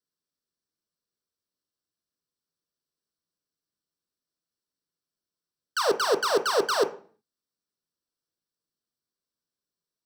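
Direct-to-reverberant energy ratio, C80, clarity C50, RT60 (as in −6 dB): 6.0 dB, 18.5 dB, 14.0 dB, 0.45 s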